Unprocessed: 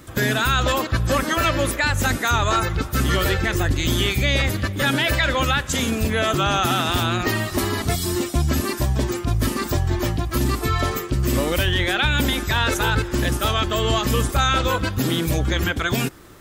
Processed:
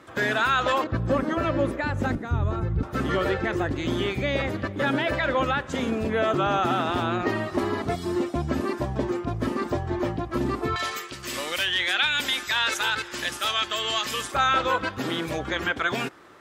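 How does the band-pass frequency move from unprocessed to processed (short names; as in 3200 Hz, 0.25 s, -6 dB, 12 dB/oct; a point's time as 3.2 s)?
band-pass, Q 0.55
1000 Hz
from 0.84 s 320 Hz
from 2.15 s 120 Hz
from 2.83 s 540 Hz
from 10.76 s 3100 Hz
from 14.32 s 1100 Hz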